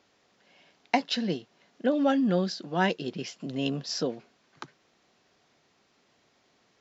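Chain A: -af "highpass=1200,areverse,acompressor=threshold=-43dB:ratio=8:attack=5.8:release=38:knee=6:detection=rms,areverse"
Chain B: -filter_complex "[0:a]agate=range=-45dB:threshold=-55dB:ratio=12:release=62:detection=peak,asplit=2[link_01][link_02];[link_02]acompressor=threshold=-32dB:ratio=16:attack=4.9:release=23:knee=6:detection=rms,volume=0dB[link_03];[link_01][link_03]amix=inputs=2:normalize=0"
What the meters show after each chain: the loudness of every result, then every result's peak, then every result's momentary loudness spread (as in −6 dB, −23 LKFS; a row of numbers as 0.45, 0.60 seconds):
−47.0, −26.0 LKFS; −30.5, −5.0 dBFS; 16, 19 LU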